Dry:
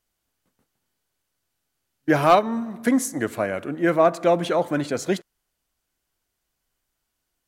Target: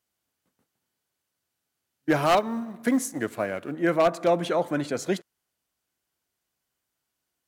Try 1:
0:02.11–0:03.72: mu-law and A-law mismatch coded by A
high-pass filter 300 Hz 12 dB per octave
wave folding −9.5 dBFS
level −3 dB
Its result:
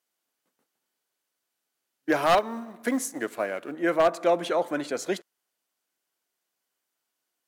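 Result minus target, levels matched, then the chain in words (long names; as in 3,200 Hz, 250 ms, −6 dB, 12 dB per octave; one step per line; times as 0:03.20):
125 Hz band −9.0 dB
0:02.11–0:03.72: mu-law and A-law mismatch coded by A
high-pass filter 90 Hz 12 dB per octave
wave folding −9.5 dBFS
level −3 dB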